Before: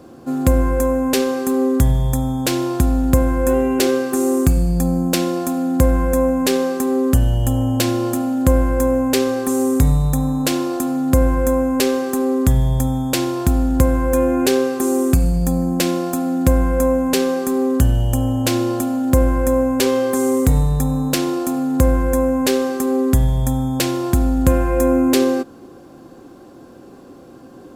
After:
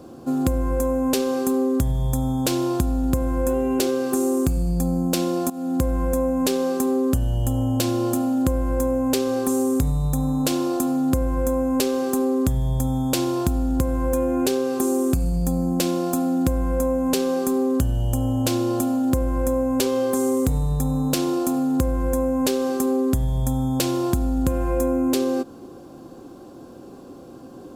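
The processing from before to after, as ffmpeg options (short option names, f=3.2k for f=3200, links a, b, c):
-filter_complex "[0:a]asplit=2[a][b];[a]atrim=end=5.5,asetpts=PTS-STARTPTS,afade=t=out:st=5.496:d=0.004:c=hsin:silence=0.149624[c];[b]atrim=start=5.5,asetpts=PTS-STARTPTS,afade=t=in:d=0.59:c=qsin:silence=0.149624[d];[c][d]concat=n=2:v=0:a=1,equalizer=f=1.9k:w=1.8:g=-7,acompressor=threshold=-18dB:ratio=6"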